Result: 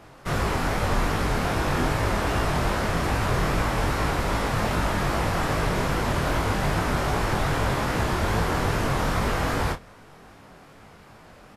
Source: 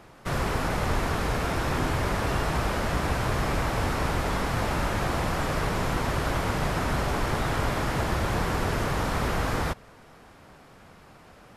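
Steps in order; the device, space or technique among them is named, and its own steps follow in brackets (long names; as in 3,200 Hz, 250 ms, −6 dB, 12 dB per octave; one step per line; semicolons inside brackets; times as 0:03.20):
double-tracked vocal (double-tracking delay 29 ms −10 dB; chorus effect 2.5 Hz, delay 18 ms, depth 6.1 ms)
level +5 dB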